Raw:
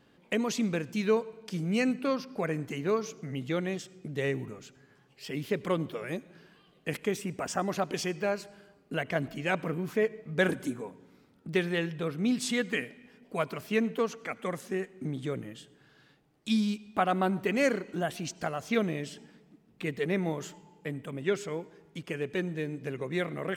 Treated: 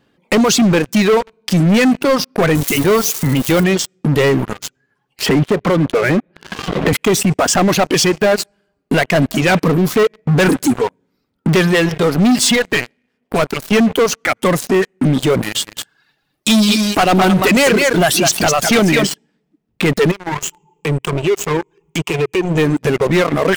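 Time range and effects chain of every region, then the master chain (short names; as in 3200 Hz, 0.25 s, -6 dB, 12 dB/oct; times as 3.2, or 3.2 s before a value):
2.55–3.64 switching spikes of -31 dBFS + AM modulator 250 Hz, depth 25%
5.26–6.93 air absorption 340 m + three-band squash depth 100%
12.55–13.72 half-wave gain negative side -12 dB + HPF 58 Hz
15.43–19.07 high shelf 2200 Hz +8.5 dB + echo 0.206 s -6 dB
20.11–22.58 ripple EQ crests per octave 0.71, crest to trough 15 dB + compressor 2.5:1, threshold -47 dBFS
whole clip: reverb removal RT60 1.4 s; sample leveller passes 5; maximiser +21 dB; gain -7 dB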